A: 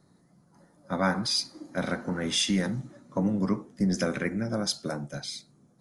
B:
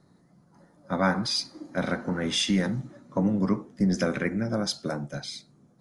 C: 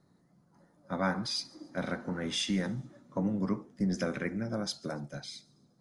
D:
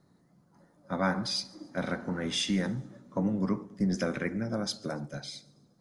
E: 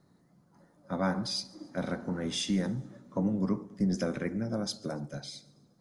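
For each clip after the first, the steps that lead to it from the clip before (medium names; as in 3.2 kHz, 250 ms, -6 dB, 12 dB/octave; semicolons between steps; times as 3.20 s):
treble shelf 8.1 kHz -10.5 dB; trim +2 dB
feedback echo behind a high-pass 141 ms, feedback 40%, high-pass 4.6 kHz, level -21.5 dB; trim -6.5 dB
filtered feedback delay 107 ms, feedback 62%, low-pass 1.1 kHz, level -19 dB; trim +2 dB
dynamic bell 2 kHz, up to -6 dB, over -49 dBFS, Q 0.7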